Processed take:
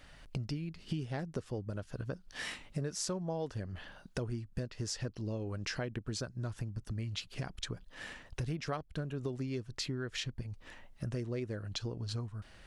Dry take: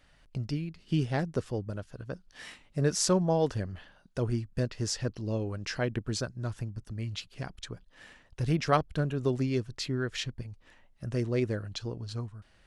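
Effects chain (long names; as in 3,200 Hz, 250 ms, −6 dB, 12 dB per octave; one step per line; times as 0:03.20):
downward compressor 6 to 1, threshold −42 dBFS, peak gain reduction 21.5 dB
level +6.5 dB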